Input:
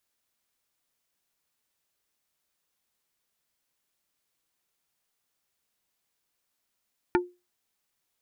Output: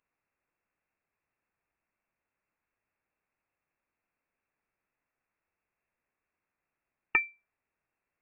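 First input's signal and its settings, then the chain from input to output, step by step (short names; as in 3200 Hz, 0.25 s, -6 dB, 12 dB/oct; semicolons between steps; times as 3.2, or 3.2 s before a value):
wood hit plate, lowest mode 356 Hz, decay 0.26 s, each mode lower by 2.5 dB, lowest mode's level -17 dB
inverted band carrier 2700 Hz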